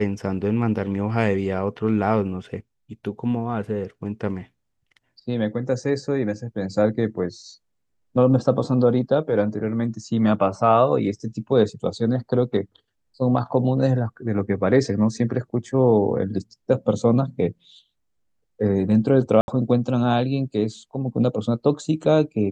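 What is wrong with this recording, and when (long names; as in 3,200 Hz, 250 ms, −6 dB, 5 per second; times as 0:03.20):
0:19.41–0:19.48: drop-out 71 ms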